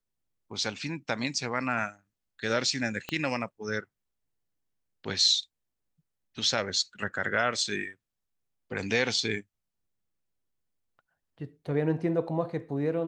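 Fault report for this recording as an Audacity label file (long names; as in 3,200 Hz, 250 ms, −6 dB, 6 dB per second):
3.090000	3.090000	click −18 dBFS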